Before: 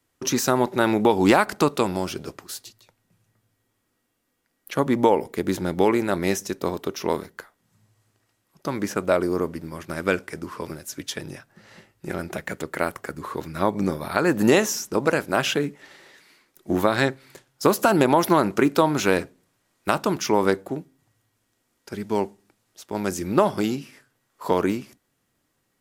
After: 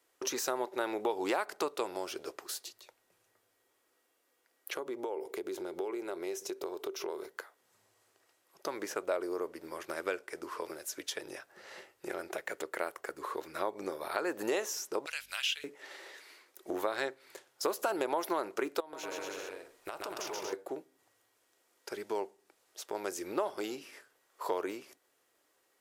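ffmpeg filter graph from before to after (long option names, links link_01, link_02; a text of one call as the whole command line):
ffmpeg -i in.wav -filter_complex "[0:a]asettb=1/sr,asplit=3[link_01][link_02][link_03];[link_01]atrim=end=4.744[link_04];[link_02]atrim=start=4.74:end=7.29,asetpts=PTS-STARTPTS,afade=type=in:duration=0.004:curve=qsin,afade=type=out:start_time=2.546:duration=0.004:curve=qsin,bandreject=frequency=1800:width=8.4,acompressor=threshold=-31dB:ratio=3:attack=3.2:release=140:knee=1:detection=peak,equalizer=frequency=380:width_type=o:width=0.3:gain=9[link_05];[link_03]atrim=start=7.286[link_06];[link_04][link_05]acrossfade=duration=0.004:curve1=hsin:curve2=qsin[link_07];[link_07][link_06]acrossfade=duration=0.004:curve1=qsin:curve2=hsin,asettb=1/sr,asplit=3[link_08][link_09][link_10];[link_08]atrim=end=15.064[link_11];[link_09]atrim=start=15.06:end=15.64,asetpts=PTS-STARTPTS,afade=type=in:duration=0.004:curve=qsin,afade=type=out:start_time=0.576:duration=0.004:curve=qsin,highpass=frequency=2900:width_type=q:width=2.2,aeval=exprs='val(0)+0.00447*(sin(2*PI*50*n/s)+sin(2*PI*2*50*n/s)/2+sin(2*PI*3*50*n/s)/3+sin(2*PI*4*50*n/s)/4+sin(2*PI*5*50*n/s)/5)':channel_layout=same[link_12];[link_10]atrim=start=15.636[link_13];[link_11][link_12]acrossfade=duration=0.004:curve1=hsin:curve2=qsin[link_14];[link_14][link_13]acrossfade=duration=0.004:curve1=qsin:curve2=hsin,asettb=1/sr,asplit=3[link_15][link_16][link_17];[link_15]atrim=end=18.804[link_18];[link_16]atrim=start=18.8:end=20.53,asetpts=PTS-STARTPTS,afade=type=in:duration=0.004:curve=qsin,afade=type=out:start_time=1.726:duration=0.004:curve=qsin,asubboost=boost=10:cutoff=100,acompressor=threshold=-32dB:ratio=8:attack=3.2:release=140:knee=1:detection=peak,aecho=1:1:130|234|317.2|383.8|437:0.794|0.631|0.501|0.398|0.316,atrim=end_sample=76293[link_19];[link_17]atrim=start=20.526[link_20];[link_18][link_19]acrossfade=duration=0.004:curve1=hsin:curve2=qsin[link_21];[link_21][link_20]acrossfade=duration=0.004:curve1=qsin:curve2=hsin,lowshelf=frequency=280:width_type=q:width=1.5:gain=-10.5,acompressor=threshold=-40dB:ratio=2,bass=frequency=250:gain=-9,treble=frequency=4000:gain=0" out.wav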